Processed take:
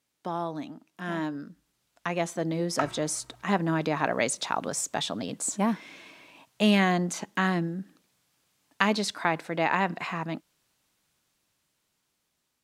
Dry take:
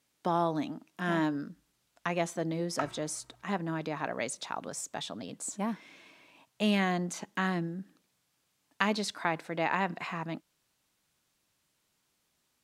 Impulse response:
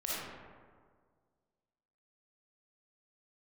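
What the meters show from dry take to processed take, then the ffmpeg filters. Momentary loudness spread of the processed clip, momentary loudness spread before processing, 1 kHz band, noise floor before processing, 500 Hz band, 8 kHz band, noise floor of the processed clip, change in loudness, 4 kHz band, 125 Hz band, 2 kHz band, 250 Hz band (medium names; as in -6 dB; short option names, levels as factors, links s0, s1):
13 LU, 9 LU, +4.0 dB, -77 dBFS, +4.5 dB, +7.0 dB, -78 dBFS, +5.0 dB, +5.5 dB, +4.5 dB, +4.5 dB, +4.5 dB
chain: -af "dynaudnorm=f=740:g=7:m=4.47,volume=0.668"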